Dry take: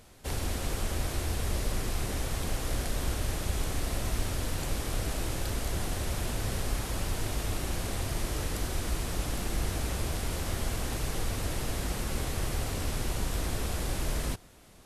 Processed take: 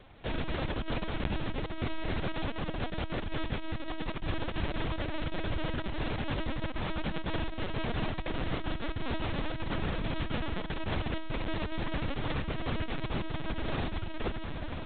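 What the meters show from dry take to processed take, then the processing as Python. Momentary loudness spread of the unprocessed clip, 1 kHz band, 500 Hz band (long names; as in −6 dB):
1 LU, +0.5 dB, +0.5 dB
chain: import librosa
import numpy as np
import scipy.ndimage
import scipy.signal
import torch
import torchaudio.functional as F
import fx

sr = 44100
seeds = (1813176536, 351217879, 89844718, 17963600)

y = fx.hum_notches(x, sr, base_hz=60, count=7)
y = fx.echo_feedback(y, sr, ms=1096, feedback_pct=46, wet_db=-8.5)
y = fx.room_shoebox(y, sr, seeds[0], volume_m3=2800.0, walls='furnished', distance_m=0.34)
y = fx.over_compress(y, sr, threshold_db=-31.0, ratio=-0.5)
y = fx.lpc_vocoder(y, sr, seeds[1], excitation='pitch_kept', order=10)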